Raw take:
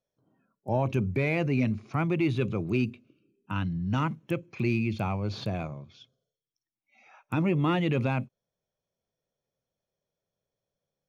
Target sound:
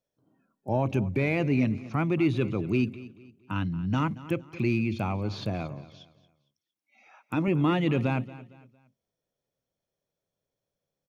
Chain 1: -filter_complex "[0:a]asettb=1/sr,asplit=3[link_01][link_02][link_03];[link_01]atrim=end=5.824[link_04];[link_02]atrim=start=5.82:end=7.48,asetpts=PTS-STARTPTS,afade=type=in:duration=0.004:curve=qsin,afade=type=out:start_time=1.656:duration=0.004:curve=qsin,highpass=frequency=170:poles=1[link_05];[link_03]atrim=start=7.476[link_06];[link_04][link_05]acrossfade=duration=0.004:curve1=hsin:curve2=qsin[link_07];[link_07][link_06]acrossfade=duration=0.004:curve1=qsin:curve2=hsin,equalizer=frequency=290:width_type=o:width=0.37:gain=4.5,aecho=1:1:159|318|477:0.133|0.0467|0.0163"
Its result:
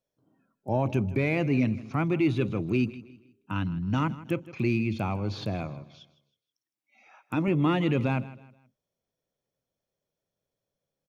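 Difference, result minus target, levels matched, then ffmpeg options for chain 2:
echo 70 ms early
-filter_complex "[0:a]asettb=1/sr,asplit=3[link_01][link_02][link_03];[link_01]atrim=end=5.824[link_04];[link_02]atrim=start=5.82:end=7.48,asetpts=PTS-STARTPTS,afade=type=in:duration=0.004:curve=qsin,afade=type=out:start_time=1.656:duration=0.004:curve=qsin,highpass=frequency=170:poles=1[link_05];[link_03]atrim=start=7.476[link_06];[link_04][link_05]acrossfade=duration=0.004:curve1=hsin:curve2=qsin[link_07];[link_07][link_06]acrossfade=duration=0.004:curve1=qsin:curve2=hsin,equalizer=frequency=290:width_type=o:width=0.37:gain=4.5,aecho=1:1:229|458|687:0.133|0.0467|0.0163"

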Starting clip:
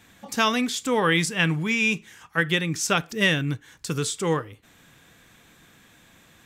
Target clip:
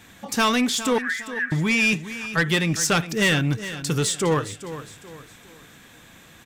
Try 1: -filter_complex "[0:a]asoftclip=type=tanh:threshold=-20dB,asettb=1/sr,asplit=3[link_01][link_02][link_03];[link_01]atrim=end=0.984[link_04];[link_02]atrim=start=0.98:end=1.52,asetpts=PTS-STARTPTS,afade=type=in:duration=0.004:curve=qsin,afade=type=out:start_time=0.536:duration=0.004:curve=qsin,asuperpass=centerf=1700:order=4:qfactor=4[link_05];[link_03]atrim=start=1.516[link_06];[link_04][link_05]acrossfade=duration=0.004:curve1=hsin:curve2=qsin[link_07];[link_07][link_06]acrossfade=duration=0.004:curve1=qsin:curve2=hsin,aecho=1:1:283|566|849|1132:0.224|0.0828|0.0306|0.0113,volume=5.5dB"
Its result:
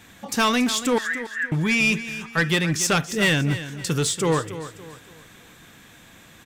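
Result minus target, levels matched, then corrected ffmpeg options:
echo 127 ms early
-filter_complex "[0:a]asoftclip=type=tanh:threshold=-20dB,asettb=1/sr,asplit=3[link_01][link_02][link_03];[link_01]atrim=end=0.984[link_04];[link_02]atrim=start=0.98:end=1.52,asetpts=PTS-STARTPTS,afade=type=in:duration=0.004:curve=qsin,afade=type=out:start_time=0.536:duration=0.004:curve=qsin,asuperpass=centerf=1700:order=4:qfactor=4[link_05];[link_03]atrim=start=1.516[link_06];[link_04][link_05]acrossfade=duration=0.004:curve1=hsin:curve2=qsin[link_07];[link_07][link_06]acrossfade=duration=0.004:curve1=qsin:curve2=hsin,aecho=1:1:410|820|1230|1640:0.224|0.0828|0.0306|0.0113,volume=5.5dB"

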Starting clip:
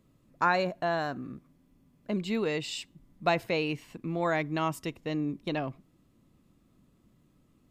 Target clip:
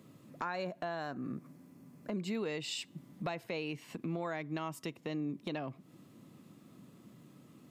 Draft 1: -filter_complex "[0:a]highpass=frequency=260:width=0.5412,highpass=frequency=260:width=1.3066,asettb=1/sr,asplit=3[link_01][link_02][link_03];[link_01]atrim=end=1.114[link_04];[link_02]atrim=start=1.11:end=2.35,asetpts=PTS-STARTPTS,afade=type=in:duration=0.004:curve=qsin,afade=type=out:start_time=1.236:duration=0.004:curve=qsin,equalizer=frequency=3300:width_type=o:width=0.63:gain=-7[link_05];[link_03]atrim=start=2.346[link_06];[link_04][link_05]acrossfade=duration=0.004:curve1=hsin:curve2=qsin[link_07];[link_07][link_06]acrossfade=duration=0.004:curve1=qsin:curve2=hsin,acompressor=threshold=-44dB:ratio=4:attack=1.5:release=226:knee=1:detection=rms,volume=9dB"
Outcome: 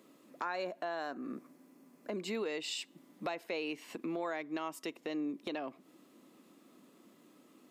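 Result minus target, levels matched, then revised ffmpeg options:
125 Hz band −12.5 dB
-filter_complex "[0:a]highpass=frequency=120:width=0.5412,highpass=frequency=120:width=1.3066,asettb=1/sr,asplit=3[link_01][link_02][link_03];[link_01]atrim=end=1.114[link_04];[link_02]atrim=start=1.11:end=2.35,asetpts=PTS-STARTPTS,afade=type=in:duration=0.004:curve=qsin,afade=type=out:start_time=1.236:duration=0.004:curve=qsin,equalizer=frequency=3300:width_type=o:width=0.63:gain=-7[link_05];[link_03]atrim=start=2.346[link_06];[link_04][link_05]acrossfade=duration=0.004:curve1=hsin:curve2=qsin[link_07];[link_07][link_06]acrossfade=duration=0.004:curve1=qsin:curve2=hsin,acompressor=threshold=-44dB:ratio=4:attack=1.5:release=226:knee=1:detection=rms,volume=9dB"

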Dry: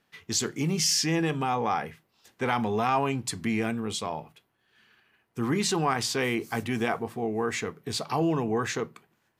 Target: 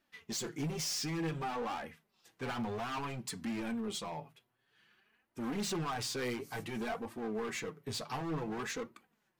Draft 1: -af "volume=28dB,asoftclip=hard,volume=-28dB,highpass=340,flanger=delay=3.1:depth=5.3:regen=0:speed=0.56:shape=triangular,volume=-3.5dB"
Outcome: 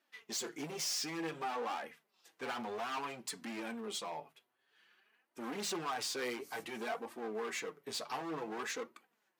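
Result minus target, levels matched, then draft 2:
250 Hz band −4.5 dB
-af "volume=28dB,asoftclip=hard,volume=-28dB,flanger=delay=3.1:depth=5.3:regen=0:speed=0.56:shape=triangular,volume=-3.5dB"

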